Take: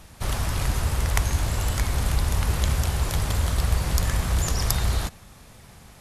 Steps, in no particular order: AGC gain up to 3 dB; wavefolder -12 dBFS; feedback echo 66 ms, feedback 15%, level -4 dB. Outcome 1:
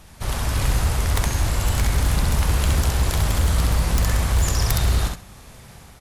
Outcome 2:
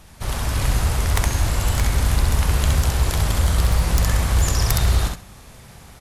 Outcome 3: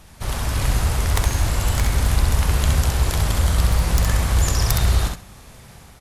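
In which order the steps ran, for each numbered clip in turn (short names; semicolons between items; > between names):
AGC > feedback echo > wavefolder; feedback echo > wavefolder > AGC; wavefolder > AGC > feedback echo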